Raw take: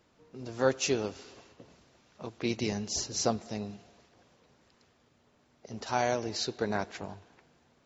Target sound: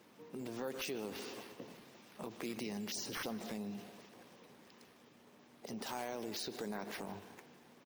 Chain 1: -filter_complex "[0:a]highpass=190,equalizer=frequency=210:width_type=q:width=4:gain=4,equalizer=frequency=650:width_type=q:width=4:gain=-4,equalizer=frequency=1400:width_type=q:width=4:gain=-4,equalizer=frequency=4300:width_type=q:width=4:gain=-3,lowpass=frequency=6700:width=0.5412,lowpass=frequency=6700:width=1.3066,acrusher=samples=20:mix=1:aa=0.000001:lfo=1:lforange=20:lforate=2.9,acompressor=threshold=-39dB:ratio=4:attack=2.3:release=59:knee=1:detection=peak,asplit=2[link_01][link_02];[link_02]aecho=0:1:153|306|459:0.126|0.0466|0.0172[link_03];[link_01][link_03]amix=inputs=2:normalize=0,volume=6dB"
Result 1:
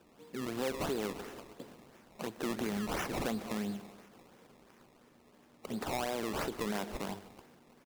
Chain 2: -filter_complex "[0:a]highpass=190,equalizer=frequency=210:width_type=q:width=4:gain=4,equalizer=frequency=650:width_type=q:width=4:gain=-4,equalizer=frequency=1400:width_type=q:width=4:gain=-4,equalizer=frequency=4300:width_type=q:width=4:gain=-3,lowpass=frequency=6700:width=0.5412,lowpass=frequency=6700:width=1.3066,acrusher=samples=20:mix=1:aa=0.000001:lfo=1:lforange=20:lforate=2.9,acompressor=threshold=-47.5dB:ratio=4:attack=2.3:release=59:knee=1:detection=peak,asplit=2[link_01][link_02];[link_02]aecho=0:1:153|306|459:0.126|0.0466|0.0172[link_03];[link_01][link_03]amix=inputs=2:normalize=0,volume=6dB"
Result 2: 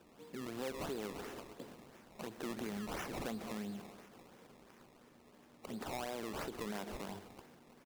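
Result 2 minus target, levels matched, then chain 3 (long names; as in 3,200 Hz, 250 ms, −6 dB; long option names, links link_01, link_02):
sample-and-hold swept by an LFO: distortion +8 dB
-filter_complex "[0:a]highpass=190,equalizer=frequency=210:width_type=q:width=4:gain=4,equalizer=frequency=650:width_type=q:width=4:gain=-4,equalizer=frequency=1400:width_type=q:width=4:gain=-4,equalizer=frequency=4300:width_type=q:width=4:gain=-3,lowpass=frequency=6700:width=0.5412,lowpass=frequency=6700:width=1.3066,acrusher=samples=4:mix=1:aa=0.000001:lfo=1:lforange=4:lforate=2.9,acompressor=threshold=-47.5dB:ratio=4:attack=2.3:release=59:knee=1:detection=peak,asplit=2[link_01][link_02];[link_02]aecho=0:1:153|306|459:0.126|0.0466|0.0172[link_03];[link_01][link_03]amix=inputs=2:normalize=0,volume=6dB"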